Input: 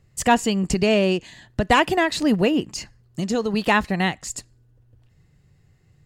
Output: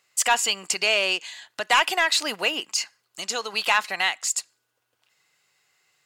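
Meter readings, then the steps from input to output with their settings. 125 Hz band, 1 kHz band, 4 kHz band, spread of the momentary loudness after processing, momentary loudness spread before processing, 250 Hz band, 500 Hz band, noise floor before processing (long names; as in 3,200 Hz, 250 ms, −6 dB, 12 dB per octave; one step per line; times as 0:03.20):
below −25 dB, −2.5 dB, +5.5 dB, 9 LU, 14 LU, −20.5 dB, −9.0 dB, −59 dBFS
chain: high-pass filter 1,200 Hz 12 dB per octave
notch filter 1,800 Hz, Q 8.5
in parallel at −1 dB: brickwall limiter −17.5 dBFS, peak gain reduction 9 dB
on the sum: soft clipping −9 dBFS, distortion −20 dB
level +1.5 dB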